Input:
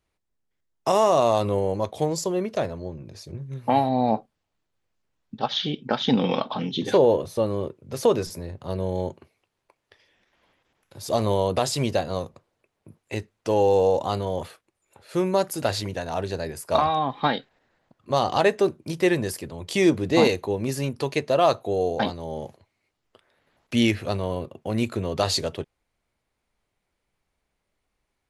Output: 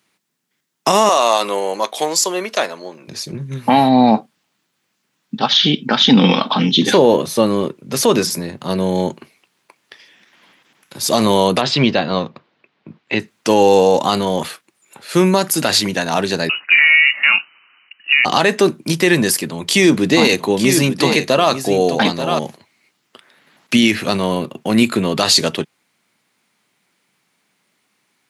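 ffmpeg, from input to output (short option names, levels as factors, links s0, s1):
-filter_complex "[0:a]asettb=1/sr,asplit=3[s0][s1][s2];[s0]atrim=end=1.094[s3];[s1]atrim=start=1.09:end=3.08,asetpts=PTS-STARTPTS,afade=t=in:d=0.004:c=qsin,afade=t=out:st=1.986:d=0.004:c=qsin,highpass=550[s4];[s2]atrim=start=3.076[s5];[s3][s4]acrossfade=d=0.004:c1=hsin:c2=qsin[s6];[s6][s5]acrossfade=d=0.004:c1=qsin:c2=hsin,asplit=3[s7][s8][s9];[s7]afade=t=out:st=11.6:d=0.02[s10];[s8]lowpass=f=4100:w=0.5412,lowpass=f=4100:w=1.3066,afade=t=in:st=11.6:d=0.02,afade=t=out:st=13.19:d=0.02[s11];[s9]afade=t=in:st=13.19:d=0.02[s12];[s10][s11][s12]amix=inputs=3:normalize=0,asettb=1/sr,asplit=3[s13][s14][s15];[s13]atrim=end=16.494[s16];[s14]atrim=start=16.49:end=18.25,asetpts=PTS-STARTPTS,afade=t=in:d=0.004:c=qsin,afade=t=out:st=1.756:d=0.004:c=qsin,lowpass=f=2600:t=q:w=0.5098,lowpass=f=2600:t=q:w=0.6013,lowpass=f=2600:t=q:w=0.9,lowpass=f=2600:t=q:w=2.563,afreqshift=-3000[s17];[s15]atrim=start=18.246[s18];[s16][s17]acrossfade=d=0.004:c1=hsin:c2=qsin[s19];[s19][s18]acrossfade=d=0.004:c1=qsin:c2=hsin,asettb=1/sr,asplit=3[s20][s21][s22];[s20]atrim=end=19.374[s23];[s21]atrim=start=19.37:end=22.39,asetpts=PTS-STARTPTS,afade=t=in:d=0.004:c=qsin,afade=t=out:st=3.016:d=0.004:c=qsin,aecho=1:1:886:0.282,atrim=end_sample=133182[s24];[s22]atrim=start=22.386[s25];[s23][s24]acrossfade=d=0.004:c1=hsin:c2=qsin[s26];[s26][s25]acrossfade=d=0.004:c1=qsin:c2=hsin,asettb=1/sr,asplit=3[s27][s28][s29];[s27]atrim=end=24.744[s30];[s28]atrim=start=24.74:end=25.2,asetpts=PTS-STARTPTS,afade=t=in:d=0.004:c=qsin,afade=t=out:st=0.456:d=0.004:c=qsin,bandreject=f=6000:w=5.6[s31];[s29]atrim=start=25.196[s32];[s30][s31]acrossfade=d=0.004:c1=hsin:c2=qsin[s33];[s33][s32]acrossfade=d=0.004:c1=qsin:c2=hsin,highpass=f=170:w=0.5412,highpass=f=170:w=1.3066,equalizer=f=540:w=0.79:g=-10,alimiter=level_in=8.41:limit=0.891:release=50:level=0:latency=1,volume=0.891"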